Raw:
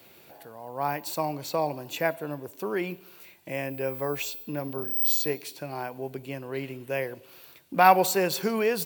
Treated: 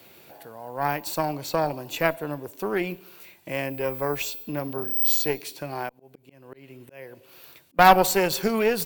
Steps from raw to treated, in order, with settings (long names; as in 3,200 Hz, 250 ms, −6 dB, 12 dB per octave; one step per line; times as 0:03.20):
0:05.89–0:07.79: volume swells 572 ms
harmonic generator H 6 −18 dB, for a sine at −3.5 dBFS
level +2.5 dB